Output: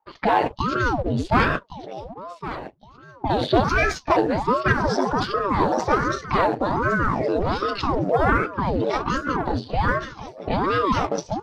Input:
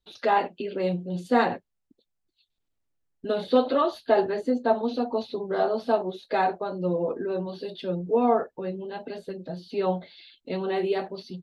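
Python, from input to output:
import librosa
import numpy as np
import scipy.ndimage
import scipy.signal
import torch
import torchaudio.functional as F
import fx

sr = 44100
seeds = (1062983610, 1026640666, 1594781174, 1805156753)

p1 = fx.pitch_trill(x, sr, semitones=4.5, every_ms=520)
p2 = fx.leveller(p1, sr, passes=1)
p3 = fx.over_compress(p2, sr, threshold_db=-32.0, ratio=-1.0)
p4 = p2 + F.gain(torch.from_numpy(p3), 0.5).numpy()
p5 = fx.env_lowpass(p4, sr, base_hz=1000.0, full_db=-15.5)
p6 = p5 + fx.echo_feedback(p5, sr, ms=1113, feedback_pct=27, wet_db=-13, dry=0)
p7 = fx.ring_lfo(p6, sr, carrier_hz=460.0, swing_pct=90, hz=1.3)
y = F.gain(torch.from_numpy(p7), 2.5).numpy()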